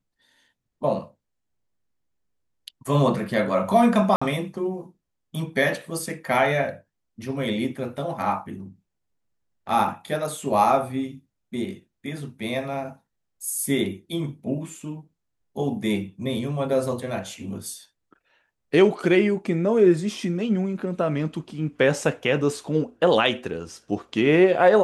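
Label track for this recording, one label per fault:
4.160000	4.210000	dropout 55 ms

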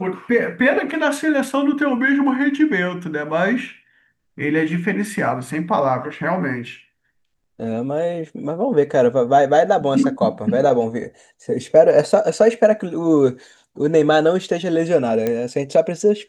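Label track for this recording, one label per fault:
15.270000	15.270000	pop -9 dBFS

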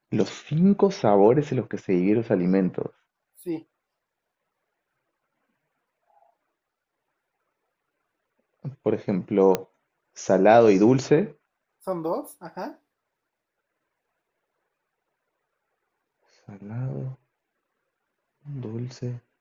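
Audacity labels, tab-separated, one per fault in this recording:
9.550000	9.550000	pop -9 dBFS

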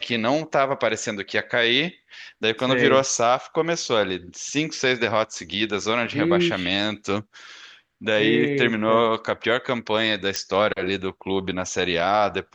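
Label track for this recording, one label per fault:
10.360000	10.360000	pop -9 dBFS

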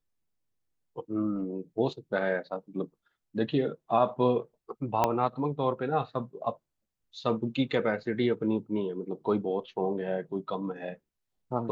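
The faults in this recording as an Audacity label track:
5.040000	5.040000	pop -11 dBFS

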